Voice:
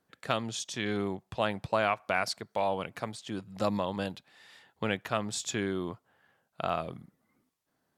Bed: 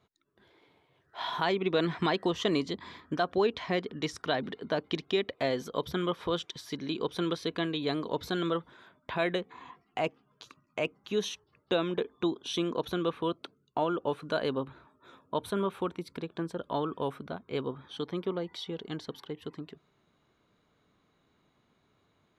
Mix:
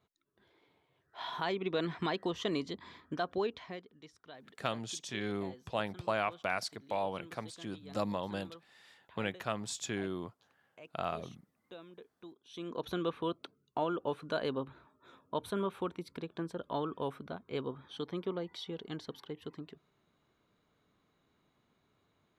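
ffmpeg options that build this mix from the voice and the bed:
ffmpeg -i stem1.wav -i stem2.wav -filter_complex "[0:a]adelay=4350,volume=-5dB[link_01];[1:a]volume=12dB,afade=type=out:start_time=3.35:duration=0.53:silence=0.158489,afade=type=in:start_time=12.49:duration=0.42:silence=0.125893[link_02];[link_01][link_02]amix=inputs=2:normalize=0" out.wav

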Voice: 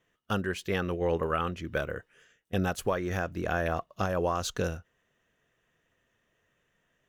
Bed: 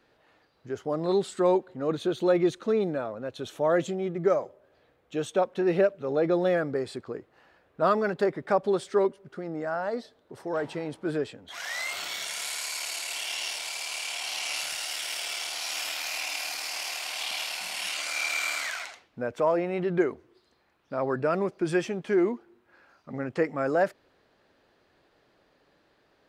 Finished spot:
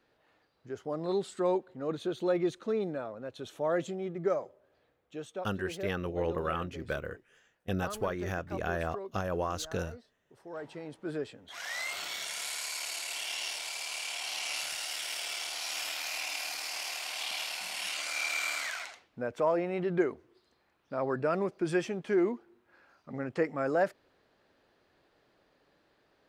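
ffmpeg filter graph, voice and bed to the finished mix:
ffmpeg -i stem1.wav -i stem2.wav -filter_complex "[0:a]adelay=5150,volume=-4dB[link_01];[1:a]volume=8dB,afade=type=out:start_time=4.7:duration=0.85:silence=0.266073,afade=type=in:start_time=10.22:duration=1.5:silence=0.199526[link_02];[link_01][link_02]amix=inputs=2:normalize=0" out.wav

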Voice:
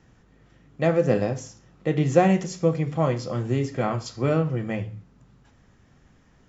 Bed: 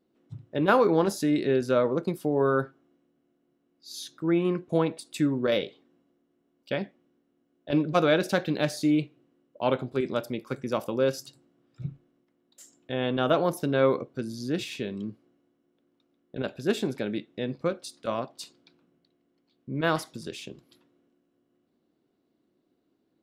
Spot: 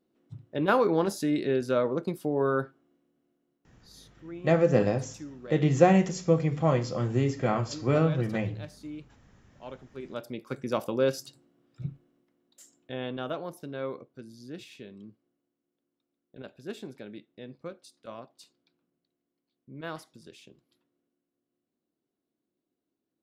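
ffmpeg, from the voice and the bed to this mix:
ffmpeg -i stem1.wav -i stem2.wav -filter_complex "[0:a]adelay=3650,volume=-1.5dB[link_01];[1:a]volume=14.5dB,afade=type=out:start_time=3.26:duration=0.81:silence=0.177828,afade=type=in:start_time=9.91:duration=0.82:silence=0.141254,afade=type=out:start_time=12.25:duration=1.15:silence=0.251189[link_02];[link_01][link_02]amix=inputs=2:normalize=0" out.wav

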